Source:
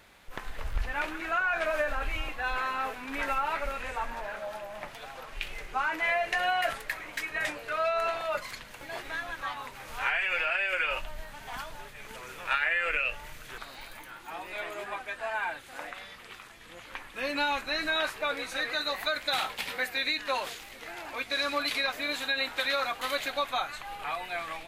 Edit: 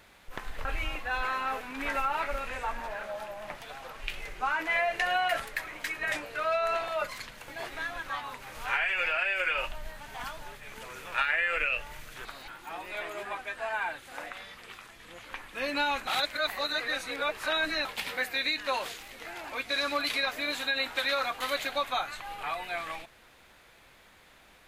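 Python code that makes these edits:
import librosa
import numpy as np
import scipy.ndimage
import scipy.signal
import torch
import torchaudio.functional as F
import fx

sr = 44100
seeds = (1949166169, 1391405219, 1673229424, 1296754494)

y = fx.edit(x, sr, fx.cut(start_s=0.65, length_s=1.33),
    fx.cut(start_s=13.81, length_s=0.28),
    fx.reverse_span(start_s=17.68, length_s=1.78), tone=tone)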